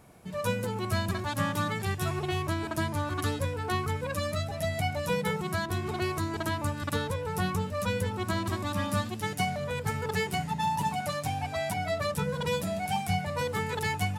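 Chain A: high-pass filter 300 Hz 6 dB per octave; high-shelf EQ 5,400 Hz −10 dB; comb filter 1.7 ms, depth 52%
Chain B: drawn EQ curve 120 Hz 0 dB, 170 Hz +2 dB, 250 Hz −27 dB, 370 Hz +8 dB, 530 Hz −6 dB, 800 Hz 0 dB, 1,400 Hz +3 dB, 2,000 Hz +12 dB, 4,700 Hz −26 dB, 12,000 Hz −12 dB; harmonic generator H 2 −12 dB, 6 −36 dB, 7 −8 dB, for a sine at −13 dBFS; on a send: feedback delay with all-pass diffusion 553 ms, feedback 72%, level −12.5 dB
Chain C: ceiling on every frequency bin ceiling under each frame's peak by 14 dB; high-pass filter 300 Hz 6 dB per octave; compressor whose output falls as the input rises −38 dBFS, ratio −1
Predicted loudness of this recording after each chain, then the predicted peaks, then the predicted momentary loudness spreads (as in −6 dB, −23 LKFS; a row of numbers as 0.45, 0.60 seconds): −32.5, −27.5, −36.5 LKFS; −18.0, −10.5, −14.0 dBFS; 4, 4, 2 LU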